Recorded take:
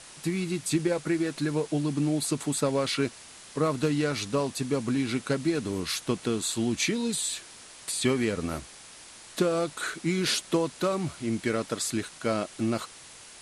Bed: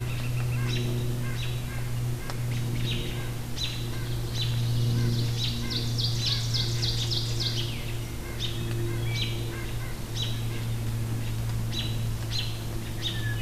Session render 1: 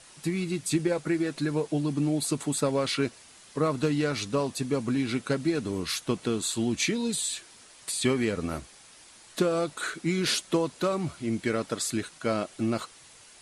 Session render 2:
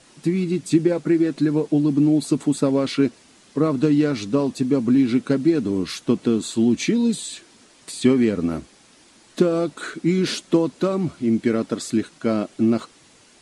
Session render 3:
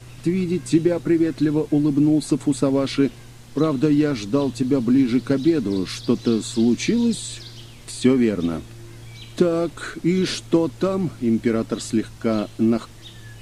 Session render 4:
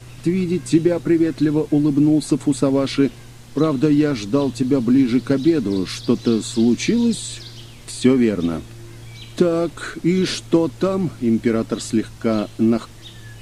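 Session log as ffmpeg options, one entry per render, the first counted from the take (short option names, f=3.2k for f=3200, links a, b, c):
-af "afftdn=nr=6:nf=-48"
-af "lowpass=8.5k,equalizer=f=260:w=0.88:g=11.5"
-filter_complex "[1:a]volume=-11dB[a];[0:a][a]amix=inputs=2:normalize=0"
-af "volume=2dB,alimiter=limit=-3dB:level=0:latency=1"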